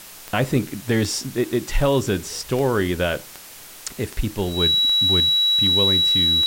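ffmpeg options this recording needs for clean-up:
-af "adeclick=t=4,bandreject=f=3.9k:w=30,afwtdn=0.01"

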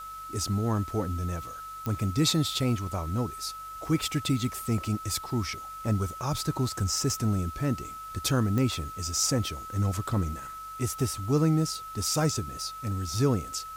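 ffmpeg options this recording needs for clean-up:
-af "adeclick=t=4,bandreject=f=49:t=h:w=4,bandreject=f=98:t=h:w=4,bandreject=f=147:t=h:w=4,bandreject=f=1.3k:w=30,afwtdn=0.0022"

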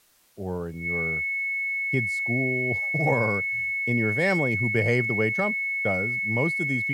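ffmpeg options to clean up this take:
-af "bandreject=f=2.2k:w=30,agate=range=-21dB:threshold=-23dB"

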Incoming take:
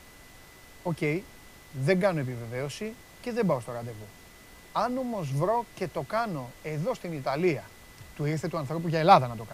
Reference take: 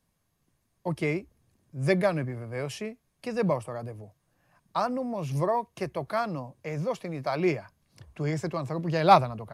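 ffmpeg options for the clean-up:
-af "bandreject=f=2k:w=30,afftdn=nr=22:nf=-51"

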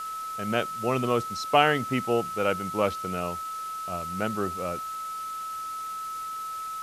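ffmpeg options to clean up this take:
-af "adeclick=t=4,bandreject=f=1.3k:w=30,afftdn=nr=30:nf=-35"

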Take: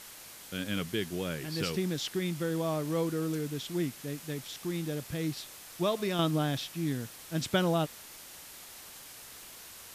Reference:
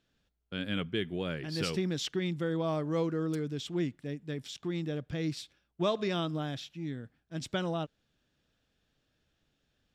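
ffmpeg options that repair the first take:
-af "afwtdn=0.0045,asetnsamples=n=441:p=0,asendcmd='6.19 volume volume -5.5dB',volume=0dB"

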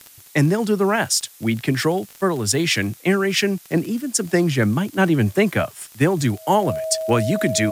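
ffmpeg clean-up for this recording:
-af "adeclick=t=4,bandreject=f=640:w=30,afftdn=nr=19:nf=-46"

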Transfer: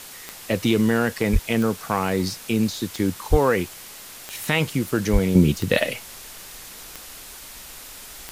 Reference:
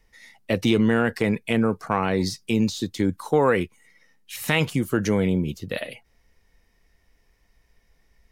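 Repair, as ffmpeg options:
-filter_complex "[0:a]adeclick=t=4,asplit=3[a][b][c];[a]afade=t=out:st=1.32:d=0.02[d];[b]highpass=f=140:w=0.5412,highpass=f=140:w=1.3066,afade=t=in:st=1.32:d=0.02,afade=t=out:st=1.44:d=0.02[e];[c]afade=t=in:st=1.44:d=0.02[f];[d][e][f]amix=inputs=3:normalize=0,asplit=3[g][h][i];[g]afade=t=out:st=3.3:d=0.02[j];[h]highpass=f=140:w=0.5412,highpass=f=140:w=1.3066,afade=t=in:st=3.3:d=0.02,afade=t=out:st=3.42:d=0.02[k];[i]afade=t=in:st=3.42:d=0.02[l];[j][k][l]amix=inputs=3:normalize=0,asplit=3[m][n][o];[m]afade=t=out:st=5.12:d=0.02[p];[n]highpass=f=140:w=0.5412,highpass=f=140:w=1.3066,afade=t=in:st=5.12:d=0.02,afade=t=out:st=5.24:d=0.02[q];[o]afade=t=in:st=5.24:d=0.02[r];[p][q][r]amix=inputs=3:normalize=0,afwtdn=0.011,asetnsamples=n=441:p=0,asendcmd='5.35 volume volume -9.5dB',volume=0dB"

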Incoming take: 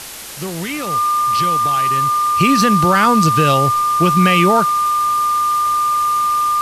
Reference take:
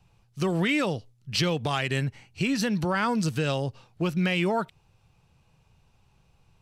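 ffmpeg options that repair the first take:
-af "bandreject=f=1.2k:w=30,afwtdn=0.032,asetnsamples=n=441:p=0,asendcmd='2.29 volume volume -11dB',volume=0dB"

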